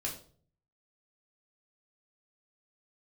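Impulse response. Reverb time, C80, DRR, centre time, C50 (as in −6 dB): 0.45 s, 12.5 dB, −3.0 dB, 22 ms, 8.5 dB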